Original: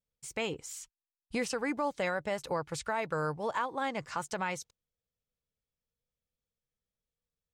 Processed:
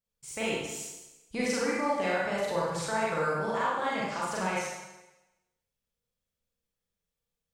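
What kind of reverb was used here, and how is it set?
four-comb reverb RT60 1 s, combs from 32 ms, DRR −6.5 dB
level −3 dB

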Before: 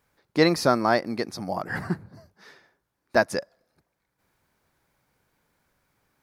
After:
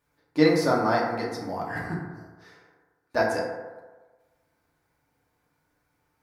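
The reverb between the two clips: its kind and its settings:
feedback delay network reverb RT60 1.3 s, low-frequency decay 0.75×, high-frequency decay 0.35×, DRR −4.5 dB
level −7.5 dB

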